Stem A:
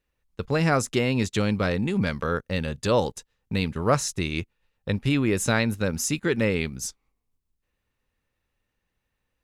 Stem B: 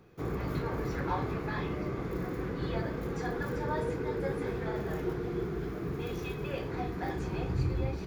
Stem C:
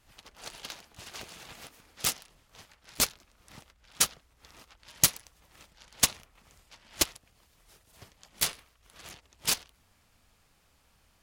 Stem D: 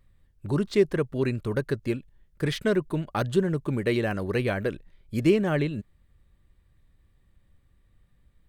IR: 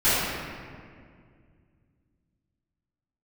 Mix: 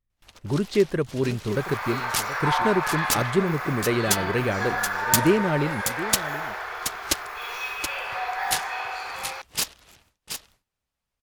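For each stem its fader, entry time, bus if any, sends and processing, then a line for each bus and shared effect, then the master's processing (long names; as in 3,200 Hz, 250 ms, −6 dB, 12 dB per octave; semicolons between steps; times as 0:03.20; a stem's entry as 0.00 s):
muted
0.0 dB, 1.35 s, send −4 dB, no echo send, inverse Chebyshev high-pass filter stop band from 240 Hz, stop band 60 dB; upward compression, threshold −56 dBFS
+1.5 dB, 0.10 s, no send, echo send −7.5 dB, pitch modulation by a square or saw wave saw up 6.9 Hz, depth 250 cents
+1.0 dB, 0.00 s, no send, echo send −14 dB, no processing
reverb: on, RT60 2.1 s, pre-delay 3 ms
echo: single-tap delay 726 ms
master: noise gate with hold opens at −45 dBFS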